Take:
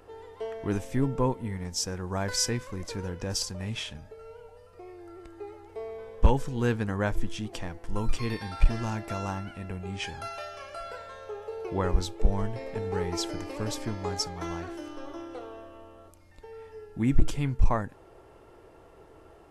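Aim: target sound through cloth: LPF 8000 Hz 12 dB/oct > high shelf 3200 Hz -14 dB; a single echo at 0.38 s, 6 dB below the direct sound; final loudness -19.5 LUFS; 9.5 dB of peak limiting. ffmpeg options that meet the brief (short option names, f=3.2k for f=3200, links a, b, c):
-af "alimiter=limit=-20dB:level=0:latency=1,lowpass=8k,highshelf=f=3.2k:g=-14,aecho=1:1:380:0.501,volume=15dB"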